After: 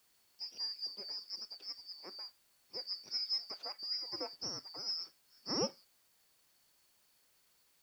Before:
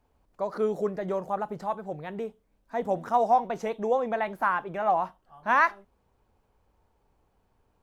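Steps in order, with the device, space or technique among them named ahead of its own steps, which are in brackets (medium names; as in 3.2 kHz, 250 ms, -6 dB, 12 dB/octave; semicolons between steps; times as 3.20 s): split-band scrambled radio (four frequency bands reordered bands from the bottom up 2341; band-pass 330–2900 Hz; white noise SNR 28 dB); trim -4.5 dB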